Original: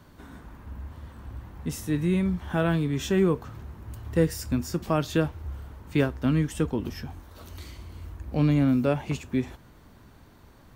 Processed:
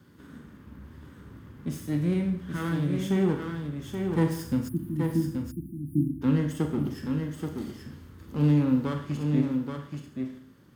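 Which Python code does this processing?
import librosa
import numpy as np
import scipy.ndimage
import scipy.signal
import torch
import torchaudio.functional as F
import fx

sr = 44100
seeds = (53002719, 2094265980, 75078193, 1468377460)

p1 = fx.lower_of_two(x, sr, delay_ms=0.61)
p2 = fx.peak_eq(p1, sr, hz=690.0, db=-10.0, octaves=0.38)
p3 = fx.rev_schroeder(p2, sr, rt60_s=0.62, comb_ms=27, drr_db=5.0)
p4 = fx.spec_erase(p3, sr, start_s=4.68, length_s=1.54, low_hz=350.0, high_hz=9000.0)
p5 = fx.rider(p4, sr, range_db=4, speed_s=2.0)
p6 = scipy.signal.sosfilt(scipy.signal.butter(2, 150.0, 'highpass', fs=sr, output='sos'), p5)
p7 = fx.low_shelf(p6, sr, hz=500.0, db=9.0)
p8 = p7 + fx.echo_single(p7, sr, ms=828, db=-5.5, dry=0)
y = F.gain(torch.from_numpy(p8), -8.0).numpy()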